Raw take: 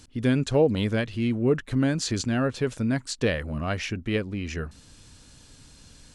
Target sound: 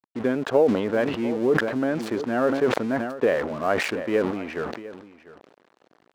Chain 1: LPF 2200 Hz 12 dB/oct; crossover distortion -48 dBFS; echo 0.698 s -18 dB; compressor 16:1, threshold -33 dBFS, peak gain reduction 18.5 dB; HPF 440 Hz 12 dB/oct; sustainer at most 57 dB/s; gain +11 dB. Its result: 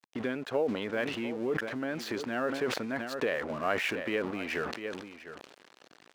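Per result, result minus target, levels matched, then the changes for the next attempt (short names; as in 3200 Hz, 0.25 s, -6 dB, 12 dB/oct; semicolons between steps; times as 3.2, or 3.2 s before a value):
compressor: peak gain reduction +11 dB; 2000 Hz band +4.5 dB
change: compressor 16:1, threshold -21.5 dBFS, peak gain reduction 7.5 dB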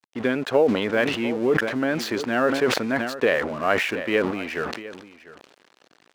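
2000 Hz band +4.0 dB
change: LPF 1100 Hz 12 dB/oct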